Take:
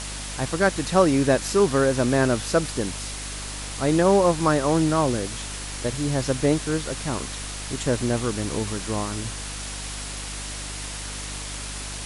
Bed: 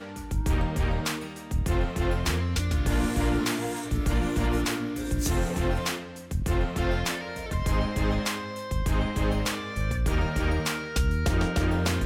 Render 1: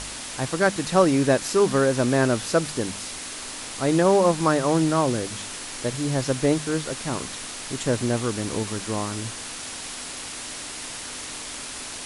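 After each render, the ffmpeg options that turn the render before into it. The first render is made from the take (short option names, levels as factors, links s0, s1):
-af "bandreject=f=50:t=h:w=4,bandreject=f=100:t=h:w=4,bandreject=f=150:t=h:w=4,bandreject=f=200:t=h:w=4"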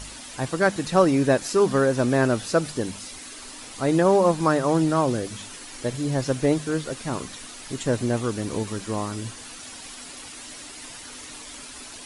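-af "afftdn=nr=9:nf=-36"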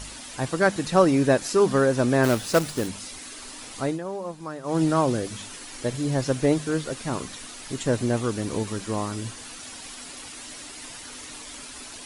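-filter_complex "[0:a]asplit=3[s0][s1][s2];[s0]afade=t=out:st=2.23:d=0.02[s3];[s1]acrusher=bits=2:mode=log:mix=0:aa=0.000001,afade=t=in:st=2.23:d=0.02,afade=t=out:st=2.87:d=0.02[s4];[s2]afade=t=in:st=2.87:d=0.02[s5];[s3][s4][s5]amix=inputs=3:normalize=0,asplit=3[s6][s7][s8];[s6]atrim=end=3.99,asetpts=PTS-STARTPTS,afade=t=out:st=3.79:d=0.2:silence=0.188365[s9];[s7]atrim=start=3.99:end=4.63,asetpts=PTS-STARTPTS,volume=0.188[s10];[s8]atrim=start=4.63,asetpts=PTS-STARTPTS,afade=t=in:d=0.2:silence=0.188365[s11];[s9][s10][s11]concat=n=3:v=0:a=1"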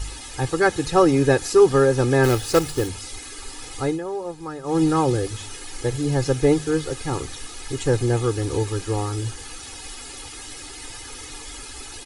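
-af "lowshelf=f=140:g=9.5,aecho=1:1:2.4:0.81"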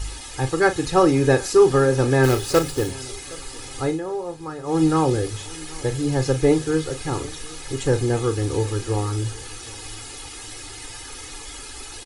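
-filter_complex "[0:a]asplit=2[s0][s1];[s1]adelay=38,volume=0.282[s2];[s0][s2]amix=inputs=2:normalize=0,asplit=2[s3][s4];[s4]adelay=767,lowpass=f=4200:p=1,volume=0.0794,asplit=2[s5][s6];[s6]adelay=767,lowpass=f=4200:p=1,volume=0.38,asplit=2[s7][s8];[s8]adelay=767,lowpass=f=4200:p=1,volume=0.38[s9];[s3][s5][s7][s9]amix=inputs=4:normalize=0"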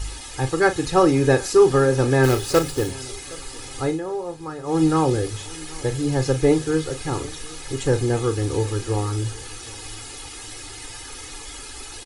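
-af anull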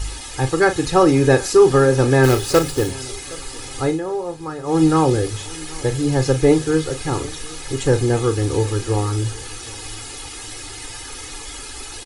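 -af "volume=1.5,alimiter=limit=0.708:level=0:latency=1"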